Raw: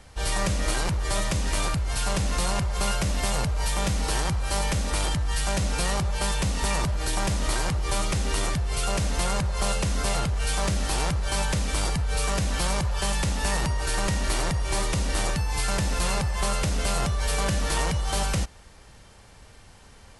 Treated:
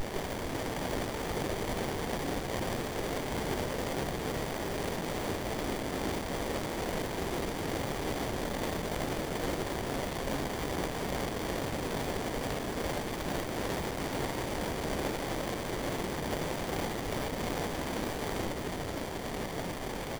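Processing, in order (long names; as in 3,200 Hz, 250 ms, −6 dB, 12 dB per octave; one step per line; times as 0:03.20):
gate on every frequency bin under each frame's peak −20 dB weak
high-shelf EQ 6,700 Hz +6 dB
compressor whose output falls as the input rises −40 dBFS, ratio −1
pitch-shifted copies added −7 semitones −9 dB, −3 semitones −10 dB
sine wavefolder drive 16 dB, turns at −21 dBFS
phaser with its sweep stopped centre 370 Hz, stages 4
double-tracking delay 43 ms −12.5 dB
single-tap delay 943 ms −13 dB
windowed peak hold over 33 samples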